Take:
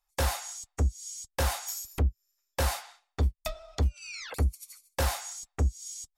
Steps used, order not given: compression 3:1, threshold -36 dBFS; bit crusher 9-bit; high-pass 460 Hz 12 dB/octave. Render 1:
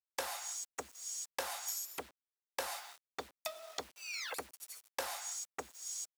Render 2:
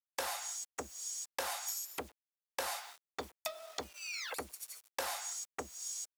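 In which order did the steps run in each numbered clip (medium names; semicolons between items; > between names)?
compression > bit crusher > high-pass; bit crusher > high-pass > compression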